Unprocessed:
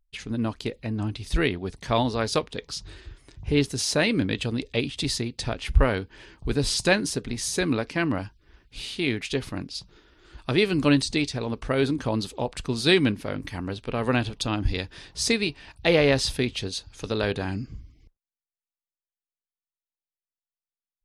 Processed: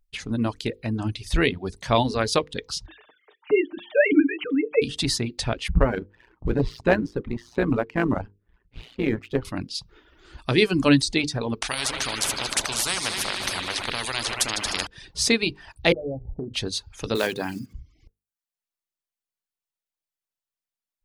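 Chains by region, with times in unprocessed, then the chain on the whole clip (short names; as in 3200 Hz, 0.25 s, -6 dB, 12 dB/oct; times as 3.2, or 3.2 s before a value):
2.86–4.82 sine-wave speech + comb 6.6 ms, depth 60% + dynamic EQ 2600 Hz, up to -6 dB, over -44 dBFS, Q 3.8
5.68–9.45 LPF 1500 Hz + AM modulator 120 Hz, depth 60% + sample leveller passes 1
11.62–14.87 multi-head echo 76 ms, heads all three, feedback 67%, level -19 dB + spectral compressor 10:1
15.92–16.54 steep low-pass 780 Hz 72 dB/oct + notches 60/120/180 Hz + compressor 12:1, threshold -28 dBFS
17.15–17.75 block floating point 5-bit + HPF 180 Hz
whole clip: notches 50/100/150/200/250/300/350/400/450/500 Hz; reverb removal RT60 0.58 s; gain +3.5 dB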